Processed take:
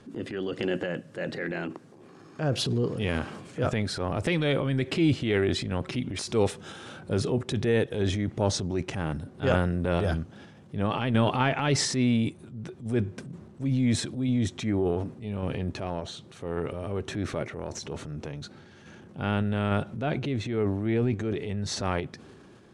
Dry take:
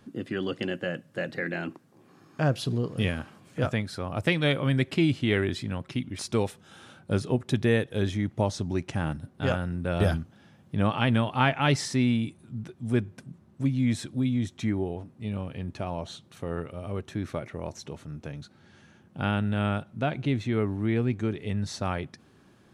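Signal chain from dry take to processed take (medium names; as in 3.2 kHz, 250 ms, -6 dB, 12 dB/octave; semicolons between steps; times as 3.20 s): in parallel at +2 dB: compression, threshold -37 dBFS, peak gain reduction 17.5 dB; on the sum: low-pass 9.7 kHz 24 dB/octave; peaking EQ 420 Hz +5.5 dB 0.71 oct; transient shaper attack -6 dB, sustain +7 dB; random-step tremolo 3.5 Hz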